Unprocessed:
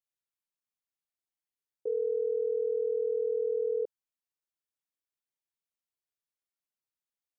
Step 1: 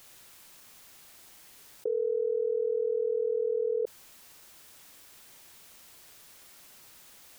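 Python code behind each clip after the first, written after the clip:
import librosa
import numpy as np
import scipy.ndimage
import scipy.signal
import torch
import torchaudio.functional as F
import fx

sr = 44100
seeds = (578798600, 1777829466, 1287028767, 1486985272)

y = fx.env_flatten(x, sr, amount_pct=100)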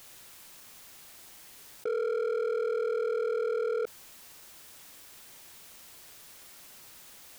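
y = np.clip(x, -10.0 ** (-29.5 / 20.0), 10.0 ** (-29.5 / 20.0))
y = y * 10.0 ** (2.5 / 20.0)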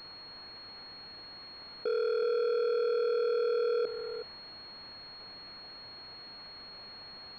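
y = scipy.signal.sosfilt(scipy.signal.butter(2, 110.0, 'highpass', fs=sr, output='sos'), x)
y = y + 10.0 ** (-9.0 / 20.0) * np.pad(y, (int(369 * sr / 1000.0), 0))[:len(y)]
y = fx.pwm(y, sr, carrier_hz=4300.0)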